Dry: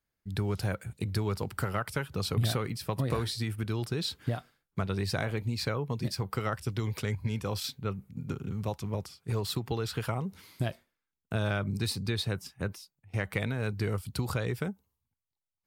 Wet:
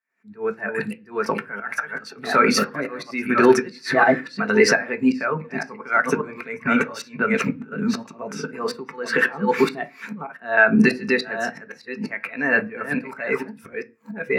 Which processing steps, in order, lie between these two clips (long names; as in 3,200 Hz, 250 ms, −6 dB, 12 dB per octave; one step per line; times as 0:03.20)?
delay that plays each chunk backwards 627 ms, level −9 dB
camcorder AGC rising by 65 dB per second
meter weighting curve A
volume swells 463 ms
high shelf with overshoot 2,300 Hz −7.5 dB, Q 1.5
in parallel at −11 dB: soft clipping −36 dBFS, distortion −11 dB
on the sum: convolution reverb RT60 0.45 s, pre-delay 3 ms, DRR 5.5 dB
wrong playback speed 44.1 kHz file played as 48 kHz
boost into a limiter +26 dB
every bin expanded away from the loudest bin 1.5 to 1
level −1 dB